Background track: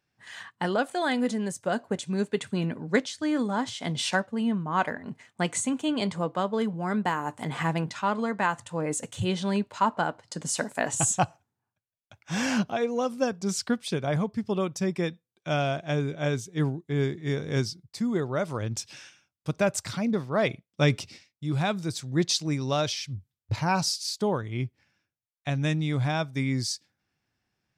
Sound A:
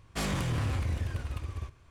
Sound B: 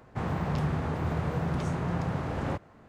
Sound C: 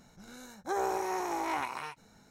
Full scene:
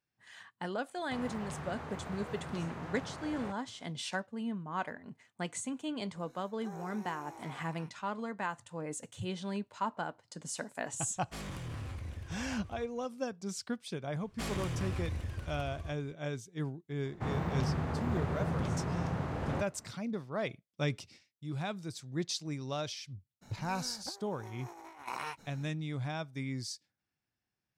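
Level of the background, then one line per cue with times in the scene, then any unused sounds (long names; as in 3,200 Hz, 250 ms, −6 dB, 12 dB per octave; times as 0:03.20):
background track −10.5 dB
0:00.95: mix in B −6.5 dB + low-shelf EQ 460 Hz −10 dB
0:05.96: mix in C −16.5 dB
0:11.16: mix in A −11 dB
0:14.23: mix in A −6 dB
0:17.05: mix in B −4 dB
0:23.41: mix in C −4.5 dB, fades 0.02 s + compressor whose output falls as the input rises −40 dBFS, ratio −0.5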